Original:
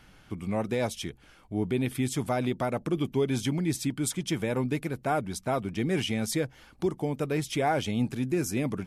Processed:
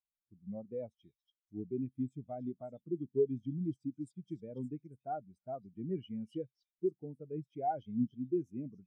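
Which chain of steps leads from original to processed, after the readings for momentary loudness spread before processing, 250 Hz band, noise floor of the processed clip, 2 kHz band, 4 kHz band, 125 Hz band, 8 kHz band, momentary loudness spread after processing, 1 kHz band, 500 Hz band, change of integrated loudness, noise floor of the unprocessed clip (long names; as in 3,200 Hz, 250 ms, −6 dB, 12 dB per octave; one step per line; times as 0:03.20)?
5 LU, −9.5 dB, below −85 dBFS, below −30 dB, below −25 dB, −13.0 dB, below −35 dB, 12 LU, −9.0 dB, −8.5 dB, −10.0 dB, −57 dBFS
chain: echo through a band-pass that steps 285 ms, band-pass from 4,100 Hz, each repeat 0.7 octaves, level −0.5 dB
every bin expanded away from the loudest bin 2.5 to 1
level −4 dB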